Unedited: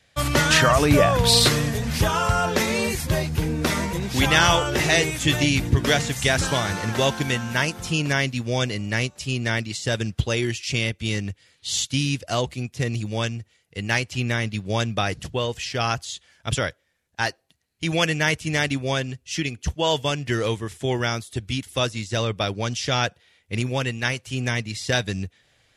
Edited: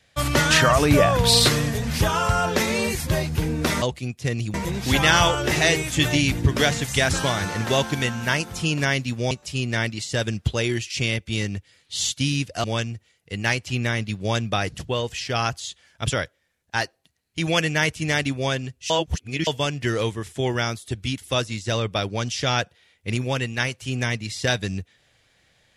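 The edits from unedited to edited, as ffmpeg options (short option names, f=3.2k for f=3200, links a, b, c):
-filter_complex "[0:a]asplit=7[a][b][c][d][e][f][g];[a]atrim=end=3.822[h];[b]atrim=start=12.368:end=13.092[i];[c]atrim=start=3.818:end=8.592[j];[d]atrim=start=9.038:end=12.372[k];[e]atrim=start=13.088:end=19.352[l];[f]atrim=start=19.348:end=19.922,asetpts=PTS-STARTPTS,areverse[m];[g]atrim=start=19.918[n];[h][i]acrossfade=d=0.004:c1=hsin:c2=hsin[o];[o][j]acrossfade=d=0.004:c1=hsin:c2=hsin[p];[p][k]acrossfade=d=0.004:c1=hsin:c2=hsin[q];[q][l]acrossfade=d=0.004:c1=hsin:c2=hsin[r];[r][m]acrossfade=d=0.004:c1=hsin:c2=hsin[s];[s][n]acrossfade=d=0.004:c1=hsin:c2=hsin"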